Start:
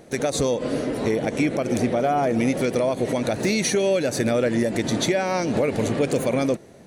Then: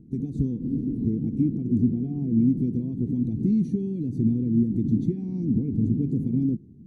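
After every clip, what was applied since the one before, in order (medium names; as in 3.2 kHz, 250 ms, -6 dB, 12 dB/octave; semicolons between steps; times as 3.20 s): inverse Chebyshev low-pass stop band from 540 Hz, stop band 40 dB; trim +4 dB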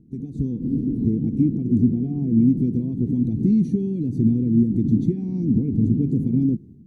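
level rider gain up to 7.5 dB; trim -3 dB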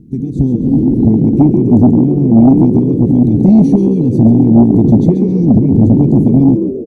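frequency-shifting echo 135 ms, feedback 46%, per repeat +59 Hz, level -8.5 dB; sine folder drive 4 dB, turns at -6.5 dBFS; trim +5 dB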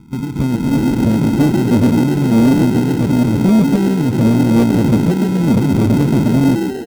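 in parallel at -4 dB: sample-and-hold 38×; on the sum: transformer saturation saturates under 210 Hz; trim -6.5 dB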